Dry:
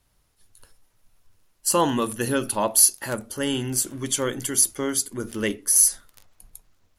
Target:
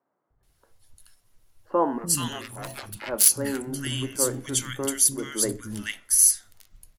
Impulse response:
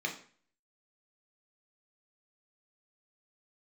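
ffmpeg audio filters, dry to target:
-filter_complex "[0:a]asettb=1/sr,asplit=3[s0][s1][s2];[s0]atrim=end=1.984[s3];[s1]atrim=start=1.98:end=2.86,asetpts=PTS-STARTPTS,afade=t=in:d=0.004:c=qsin,afade=t=out:st=0.876:d=0.004:c=qsin,aeval=exprs='0.75*(cos(1*acos(clip(val(0)/0.75,-1,1)))-cos(1*PI/2))+0.15*(cos(7*acos(clip(val(0)/0.75,-1,1)))-cos(7*PI/2))':c=same[s4];[s2]atrim=start=2.856[s5];[s3][s4]acrossfade=d=0.004:c1=hsin:c2=qsin[s6];[s6][s5]acrossfade=d=0.004:c1=qsin:c2=hsin,acrossover=split=230|1400[s7][s8][s9];[s7]adelay=300[s10];[s9]adelay=430[s11];[s10][s8][s11]amix=inputs=3:normalize=0,asplit=2[s12][s13];[1:a]atrim=start_sample=2205[s14];[s13][s14]afir=irnorm=-1:irlink=0,volume=0.126[s15];[s12][s15]amix=inputs=2:normalize=0"

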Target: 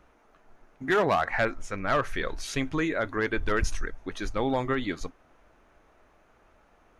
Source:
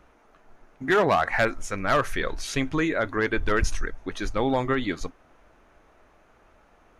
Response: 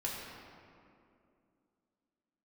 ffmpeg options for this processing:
-filter_complex "[0:a]asettb=1/sr,asplit=3[s0][s1][s2];[s0]atrim=end=1.254[s3];[s1]atrim=start=1.25:end=2.15,asetpts=PTS-STARTPTS,afade=t=in:d=0.004:c=qsin,afade=t=out:st=0.896:d=0.004:c=qsin,highshelf=f=7600:g=-11.5[s4];[s2]atrim=start=2.146[s5];[s3][s4]acrossfade=d=0.004:c1=hsin:c2=qsin[s6];[s6][s5]acrossfade=d=0.004:c1=qsin:c2=hsin,volume=0.708"

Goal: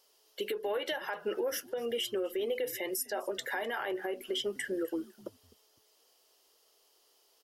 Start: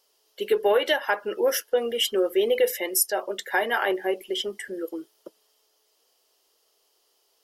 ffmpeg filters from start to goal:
-filter_complex "[0:a]acompressor=threshold=0.0398:ratio=12,alimiter=level_in=1.12:limit=0.0631:level=0:latency=1:release=62,volume=0.891,asplit=2[s0][s1];[s1]asplit=2[s2][s3];[s2]adelay=254,afreqshift=-120,volume=0.0794[s4];[s3]adelay=508,afreqshift=-240,volume=0.0245[s5];[s4][s5]amix=inputs=2:normalize=0[s6];[s0][s6]amix=inputs=2:normalize=0"

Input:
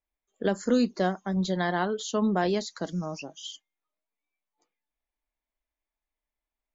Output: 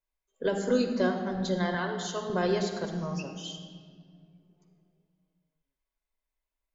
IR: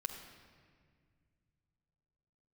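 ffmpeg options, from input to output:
-filter_complex "[0:a]asettb=1/sr,asplit=3[s0][s1][s2];[s0]atrim=end=1.744[s3];[s1]atrim=start=1.74:end=2.3,asetpts=PTS-STARTPTS,afade=t=in:d=0.004:c=qsin,afade=t=out:st=0.556:d=0.004:c=qsin,highpass=f=700:p=1[s4];[s2]atrim=start=2.296[s5];[s3][s4]acrossfade=d=0.004:c1=hsin:c2=qsin[s6];[s6][s5]acrossfade=d=0.004:c1=qsin:c2=hsin[s7];[1:a]atrim=start_sample=2205[s8];[s7][s8]afir=irnorm=-1:irlink=0"

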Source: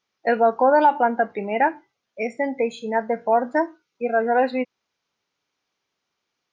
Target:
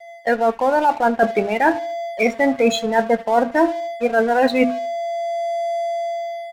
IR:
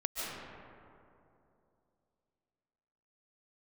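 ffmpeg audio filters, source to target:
-filter_complex "[0:a]bandreject=f=50:t=h:w=6,bandreject=f=100:t=h:w=6,bandreject=f=150:t=h:w=6,bandreject=f=200:t=h:w=6,bandreject=f=250:t=h:w=6,aeval=exprs='val(0)+0.0158*sin(2*PI*680*n/s)':c=same,dynaudnorm=f=320:g=5:m=2.82,highshelf=f=3100:g=11.5,afftdn=nr=14:nf=-26,areverse,acompressor=threshold=0.0891:ratio=10,areverse,lowshelf=f=140:g=9,asplit=2[s0][s1];[s1]adelay=75,lowpass=f=2900:p=1,volume=0.106,asplit=2[s2][s3];[s3]adelay=75,lowpass=f=2900:p=1,volume=0.41,asplit=2[s4][s5];[s5]adelay=75,lowpass=f=2900:p=1,volume=0.41[s6];[s0][s2][s4][s6]amix=inputs=4:normalize=0,aeval=exprs='sgn(val(0))*max(abs(val(0))-0.00794,0)':c=same,volume=2.51" -ar 48000 -c:a aac -b:a 96k

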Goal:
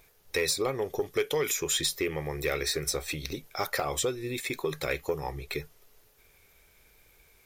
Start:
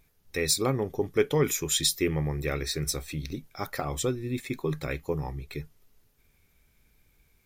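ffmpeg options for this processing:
-filter_complex "[0:a]acrossover=split=2300|7500[s0][s1][s2];[s0]acompressor=threshold=0.02:ratio=4[s3];[s1]acompressor=threshold=0.0112:ratio=4[s4];[s2]acompressor=threshold=0.00631:ratio=4[s5];[s3][s4][s5]amix=inputs=3:normalize=0,lowshelf=f=330:t=q:w=1.5:g=-8,asoftclip=type=tanh:threshold=0.0562,volume=2.51"

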